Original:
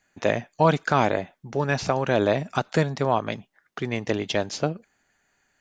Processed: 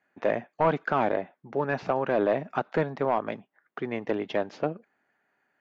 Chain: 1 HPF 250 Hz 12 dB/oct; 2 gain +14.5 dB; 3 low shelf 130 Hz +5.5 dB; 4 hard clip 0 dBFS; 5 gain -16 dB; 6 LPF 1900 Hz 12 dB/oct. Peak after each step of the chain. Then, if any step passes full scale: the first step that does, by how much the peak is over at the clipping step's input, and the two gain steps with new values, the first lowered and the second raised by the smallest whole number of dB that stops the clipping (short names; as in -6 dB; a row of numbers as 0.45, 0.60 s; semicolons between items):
-7.0, +7.5, +8.0, 0.0, -16.0, -15.5 dBFS; step 2, 8.0 dB; step 2 +6.5 dB, step 5 -8 dB